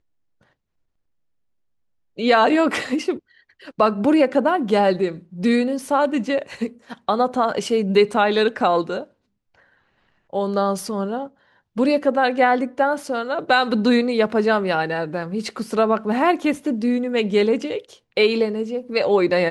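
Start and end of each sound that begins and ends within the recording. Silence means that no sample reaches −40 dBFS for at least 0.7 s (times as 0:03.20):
0:02.17–0:09.04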